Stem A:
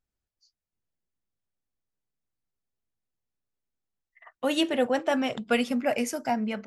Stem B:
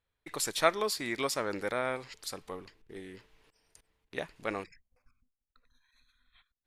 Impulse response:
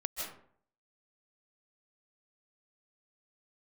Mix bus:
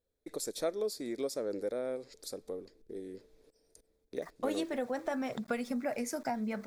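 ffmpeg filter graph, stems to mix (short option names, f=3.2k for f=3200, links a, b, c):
-filter_complex "[0:a]acompressor=threshold=-31dB:ratio=6,aeval=exprs='val(0)*gte(abs(val(0)),0.00237)':c=same,volume=-0.5dB[a];[1:a]equalizer=f=125:t=o:w=1:g=-6,equalizer=f=250:t=o:w=1:g=5,equalizer=f=500:t=o:w=1:g=11,equalizer=f=1k:t=o:w=1:g=-12,equalizer=f=2k:t=o:w=1:g=-8,acompressor=threshold=-44dB:ratio=1.5,volume=-0.5dB[b];[a][b]amix=inputs=2:normalize=0,equalizer=f=2.9k:t=o:w=0.29:g=-14"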